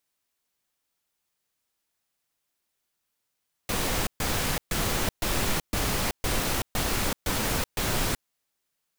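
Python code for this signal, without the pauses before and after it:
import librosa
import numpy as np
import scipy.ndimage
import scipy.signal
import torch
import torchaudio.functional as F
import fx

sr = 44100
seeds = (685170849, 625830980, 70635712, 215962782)

y = fx.noise_burst(sr, seeds[0], colour='pink', on_s=0.38, off_s=0.13, bursts=9, level_db=-26.5)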